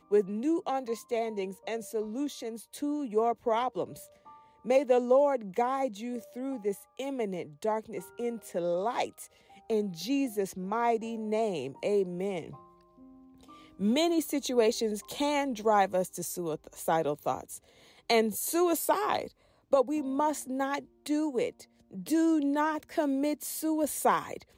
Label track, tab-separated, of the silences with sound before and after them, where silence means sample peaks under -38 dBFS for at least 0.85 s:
12.550000	13.790000	silence